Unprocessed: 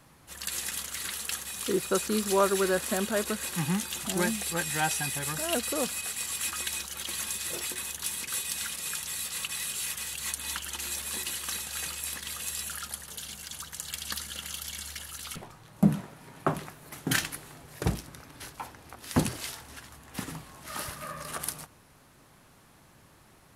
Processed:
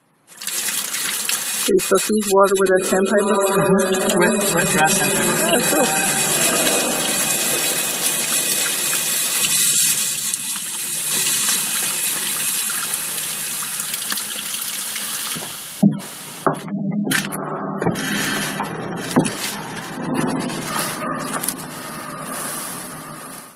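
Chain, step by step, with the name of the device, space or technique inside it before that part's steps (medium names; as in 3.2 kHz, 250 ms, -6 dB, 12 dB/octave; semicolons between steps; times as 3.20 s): 9.42–10.63 s: graphic EQ 125/250/500/2000/4000/8000 Hz +12/+4/-3/-4/+3/+6 dB; echo that smears into a reverb 1091 ms, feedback 44%, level -3.5 dB; dynamic bell 120 Hz, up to -4 dB, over -42 dBFS, Q 0.93; noise-suppressed video call (high-pass 150 Hz 24 dB/octave; spectral gate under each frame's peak -20 dB strong; level rider gain up to 14.5 dB; Opus 32 kbps 48 kHz)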